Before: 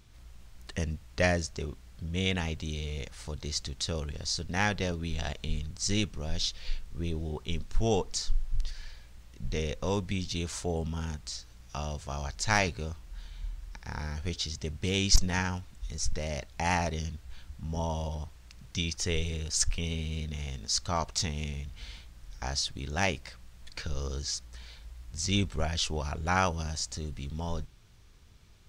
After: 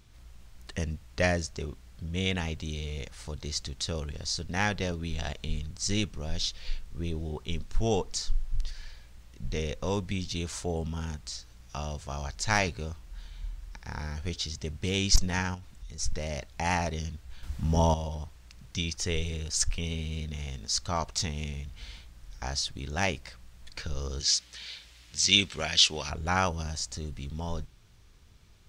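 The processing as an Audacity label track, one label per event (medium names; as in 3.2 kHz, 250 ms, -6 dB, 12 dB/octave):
15.540000	15.990000	compression 3:1, threshold -40 dBFS
17.430000	17.940000	gain +8.5 dB
24.200000	26.100000	frequency weighting D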